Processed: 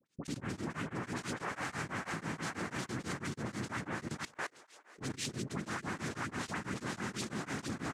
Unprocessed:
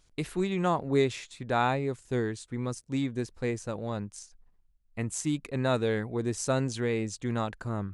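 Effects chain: comb 5.2 ms, depth 42%; noise vocoder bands 3; dispersion highs, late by 59 ms, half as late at 1300 Hz; dynamic EQ 450 Hz, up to -7 dB, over -43 dBFS, Q 1.4; split-band echo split 430 Hz, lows 90 ms, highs 0.461 s, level -4 dB; level quantiser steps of 20 dB; beating tremolo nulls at 6.1 Hz; gain +3.5 dB

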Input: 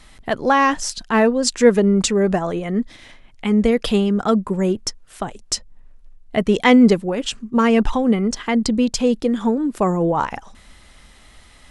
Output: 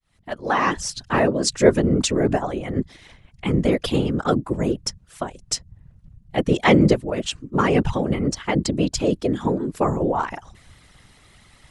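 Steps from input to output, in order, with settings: opening faded in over 0.71 s; whisperiser; harmonic-percussive split percussive +4 dB; gain -6 dB

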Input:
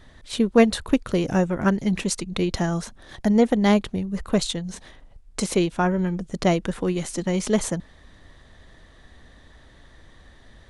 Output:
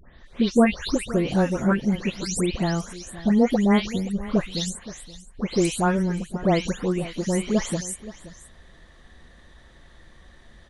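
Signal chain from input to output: spectral delay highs late, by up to 0.259 s; on a send: echo 0.524 s -17 dB

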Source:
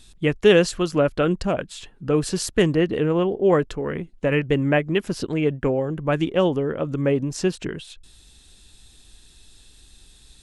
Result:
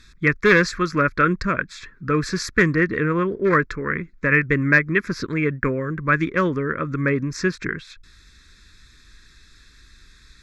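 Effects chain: one-sided clip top -12.5 dBFS; band shelf 1600 Hz +11 dB; fixed phaser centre 2900 Hz, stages 6; gain +1.5 dB

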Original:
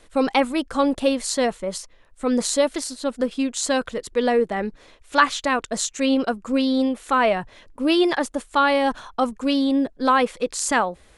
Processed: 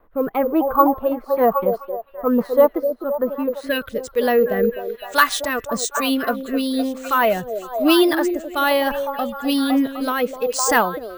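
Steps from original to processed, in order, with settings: spectral noise reduction 7 dB; in parallel at -3.5 dB: soft clip -12.5 dBFS, distortion -17 dB; on the sum: low-pass sweep 1100 Hz -> 10000 Hz, 3.51–4.08; on a send: delay with a stepping band-pass 0.255 s, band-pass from 450 Hz, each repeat 0.7 oct, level -4 dB; on the sum: rotary speaker horn 1.1 Hz; careless resampling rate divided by 3×, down filtered, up hold; gain +1 dB

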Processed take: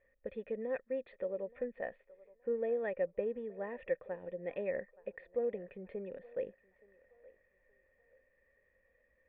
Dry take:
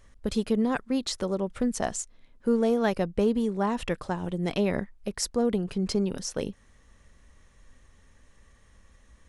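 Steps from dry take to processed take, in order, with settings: vocal tract filter e; low shelf 370 Hz -7.5 dB; on a send: narrowing echo 0.872 s, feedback 44%, band-pass 1000 Hz, level -19 dB; on the sum: gain +2.5 dB

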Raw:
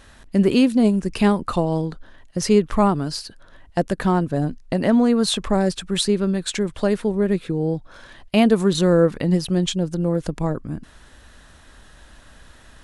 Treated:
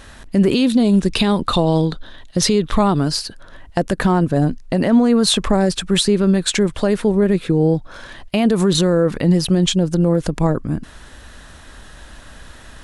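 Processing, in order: 0.54–2.99 bell 3700 Hz +12.5 dB 0.4 oct; limiter -14 dBFS, peak gain reduction 10.5 dB; gain +7.5 dB

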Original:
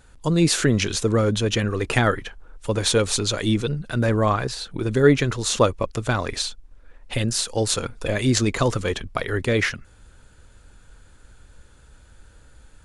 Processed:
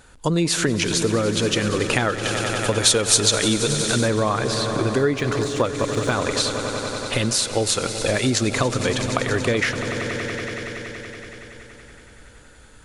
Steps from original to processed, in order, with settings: low shelf 120 Hz -9 dB; swelling echo 94 ms, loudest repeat 5, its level -16.5 dB; compressor 6:1, threshold -23 dBFS, peak gain reduction 12 dB; 2.23–4.08 high shelf 4300 Hz +8.5 dB; 5.06–6.11 de-esser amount 85%; gain +6 dB

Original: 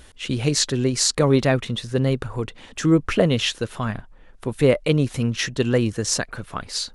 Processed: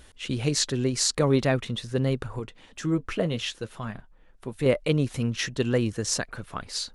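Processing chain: 2.39–4.66 flange 1.9 Hz, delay 4.9 ms, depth 1.7 ms, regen -63%; gain -4.5 dB

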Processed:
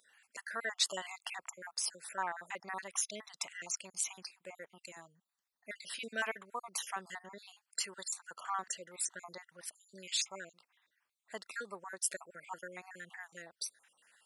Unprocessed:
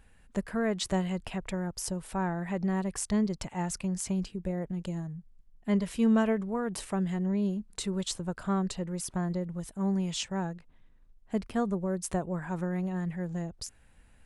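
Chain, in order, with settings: random spectral dropouts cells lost 48%; HPF 1200 Hz 12 dB/oct; gain +4.5 dB

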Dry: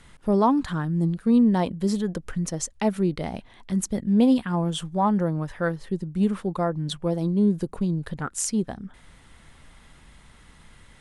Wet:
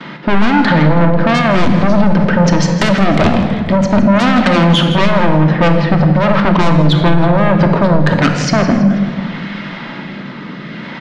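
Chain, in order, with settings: gate with hold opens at -46 dBFS; elliptic band-pass 180–5100 Hz, stop band 40 dB; tone controls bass +3 dB, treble -9 dB; in parallel at +0.5 dB: level quantiser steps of 15 dB; on the sum: rotary speaker horn 0.6 Hz; soft clip -22 dBFS, distortion -8 dB; short-mantissa float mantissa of 8-bit; sine folder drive 6 dB, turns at -21.5 dBFS; air absorption 50 m; feedback echo 0.163 s, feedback 44%, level -14.5 dB; on a send at -3.5 dB: reverb RT60 1.7 s, pre-delay 3 ms; on the sum: maximiser +16.5 dB; gain -1 dB

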